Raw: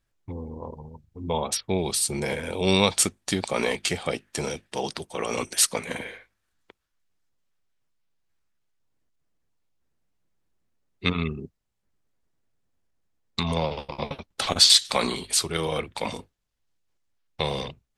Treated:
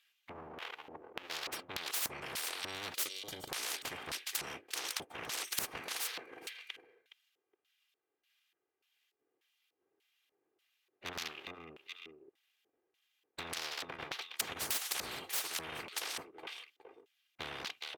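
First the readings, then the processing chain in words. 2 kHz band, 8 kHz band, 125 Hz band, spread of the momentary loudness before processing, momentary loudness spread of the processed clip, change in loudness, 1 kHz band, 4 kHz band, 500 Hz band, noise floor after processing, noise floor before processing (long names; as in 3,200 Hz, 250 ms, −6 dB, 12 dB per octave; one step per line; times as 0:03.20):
−8.5 dB, −13.5 dB, −25.0 dB, 17 LU, 14 LU, −15.0 dB, −13.5 dB, −15.0 dB, −20.5 dB, below −85 dBFS, −77 dBFS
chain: lower of the sound and its delayed copy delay 2.5 ms
on a send: repeating echo 417 ms, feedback 27%, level −17.5 dB
on the sum: auto-filter band-pass square 1.7 Hz 390–3,400 Hz
flat-topped bell 5,900 Hz −10.5 dB
gain on a spectral selection 0:02.94–0:03.49, 640–2,900 Hz −15 dB
spectral tilt +4 dB per octave
every bin compressed towards the loudest bin 10 to 1
level −4.5 dB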